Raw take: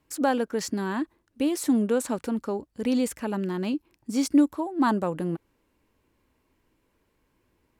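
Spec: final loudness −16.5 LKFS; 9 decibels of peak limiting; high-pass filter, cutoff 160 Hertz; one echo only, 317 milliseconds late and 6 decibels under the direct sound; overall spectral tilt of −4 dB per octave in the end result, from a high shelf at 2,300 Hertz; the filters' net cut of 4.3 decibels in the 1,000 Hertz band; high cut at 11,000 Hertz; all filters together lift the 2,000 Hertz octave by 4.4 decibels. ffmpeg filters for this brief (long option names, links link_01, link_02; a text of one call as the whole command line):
ffmpeg -i in.wav -af "highpass=160,lowpass=11000,equalizer=frequency=1000:width_type=o:gain=-8,equalizer=frequency=2000:width_type=o:gain=7,highshelf=frequency=2300:gain=5,alimiter=limit=-19.5dB:level=0:latency=1,aecho=1:1:317:0.501,volume=12.5dB" out.wav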